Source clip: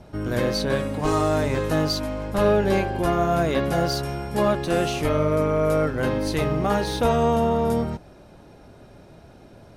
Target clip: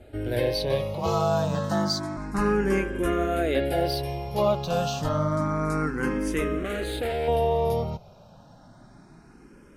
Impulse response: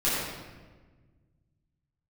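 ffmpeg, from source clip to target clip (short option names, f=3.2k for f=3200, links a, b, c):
-filter_complex "[0:a]asettb=1/sr,asplit=3[a][b][c];[a]atrim=end=0.944[d];[b]atrim=start=0.94:end=2.17,asetpts=PTS-STARTPTS,afade=t=in:d=0.004:c=qsin,afade=t=out:st=1.226:d=0.004:c=qsin,afreqshift=45[e];[c]atrim=start=2.166[f];[d][e]acrossfade=d=0.004:c1=hsin:c2=qsin[g];[g][f]acrossfade=d=0.004:c1=qsin:c2=hsin,asettb=1/sr,asplit=3[h][i][j];[h]atrim=end=6.584[k];[i]atrim=start=6.58:end=7.28,asetpts=PTS-STARTPTS,afade=t=in:d=0.004:c=qsin,afade=t=out:st=0.696:d=0.004:c=qsin,asoftclip=type=hard:threshold=-24dB[l];[j]atrim=start=7.276[m];[k][l]acrossfade=d=0.004:c1=hsin:c2=qsin[n];[n][m]acrossfade=d=0.004:c1=qsin:c2=hsin,asplit=2[o][p];[p]afreqshift=0.29[q];[o][q]amix=inputs=2:normalize=1"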